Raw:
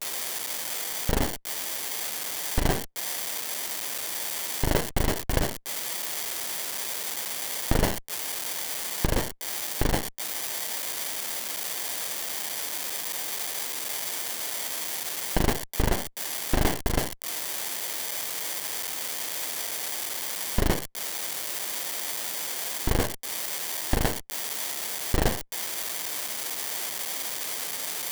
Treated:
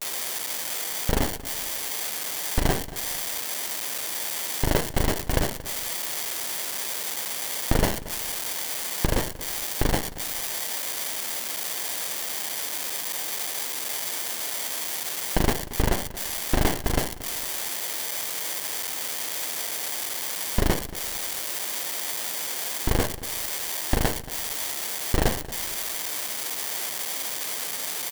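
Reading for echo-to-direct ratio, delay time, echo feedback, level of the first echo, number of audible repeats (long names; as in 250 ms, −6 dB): −16.0 dB, 229 ms, 33%, −16.5 dB, 2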